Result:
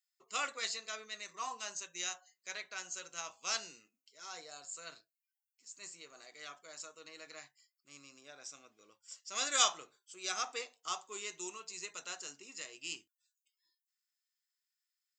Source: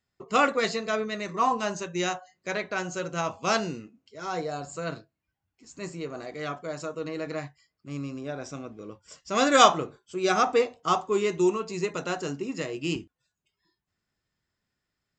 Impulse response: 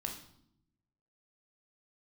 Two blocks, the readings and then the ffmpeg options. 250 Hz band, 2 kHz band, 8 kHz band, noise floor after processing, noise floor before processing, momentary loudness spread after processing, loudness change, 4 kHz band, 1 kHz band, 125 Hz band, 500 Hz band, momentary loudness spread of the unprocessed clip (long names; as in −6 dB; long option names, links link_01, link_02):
−27.5 dB, −11.5 dB, −1.0 dB, below −85 dBFS, −84 dBFS, 16 LU, −12.0 dB, −5.5 dB, −16.5 dB, below −30 dB, −23.0 dB, 16 LU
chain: -af "aderivative"